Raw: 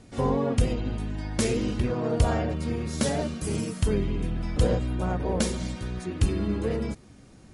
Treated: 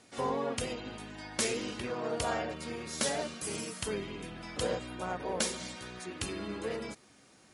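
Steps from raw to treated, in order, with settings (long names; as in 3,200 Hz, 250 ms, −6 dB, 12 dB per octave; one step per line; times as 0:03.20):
high-pass filter 890 Hz 6 dB per octave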